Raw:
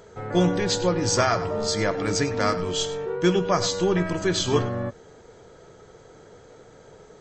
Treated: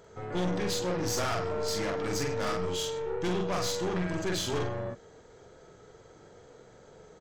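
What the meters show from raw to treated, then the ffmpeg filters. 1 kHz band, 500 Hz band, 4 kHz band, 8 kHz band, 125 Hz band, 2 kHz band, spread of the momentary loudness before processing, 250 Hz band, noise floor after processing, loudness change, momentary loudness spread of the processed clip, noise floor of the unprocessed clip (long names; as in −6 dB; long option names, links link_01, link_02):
−7.5 dB, −7.5 dB, −7.5 dB, −7.0 dB, −8.0 dB, −7.5 dB, 5 LU, −8.5 dB, −55 dBFS, −7.5 dB, 3 LU, −50 dBFS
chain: -filter_complex "[0:a]asplit=2[link_01][link_02];[link_02]adelay=44,volume=-3dB[link_03];[link_01][link_03]amix=inputs=2:normalize=0,aeval=exprs='(tanh(14.1*val(0)+0.55)-tanh(0.55))/14.1':channel_layout=same,volume=-4dB"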